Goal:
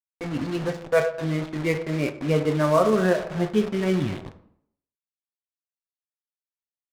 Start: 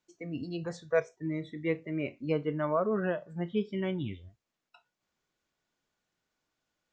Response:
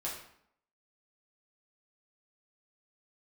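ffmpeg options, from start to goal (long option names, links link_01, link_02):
-filter_complex "[0:a]aecho=1:1:251|502:0.119|0.0309,acrusher=bits=6:mix=0:aa=0.000001,asplit=2[link_01][link_02];[1:a]atrim=start_sample=2205,highshelf=frequency=5600:gain=11.5[link_03];[link_02][link_03]afir=irnorm=-1:irlink=0,volume=-3dB[link_04];[link_01][link_04]amix=inputs=2:normalize=0,adynamicsmooth=sensitivity=8:basefreq=1300,volume=5dB"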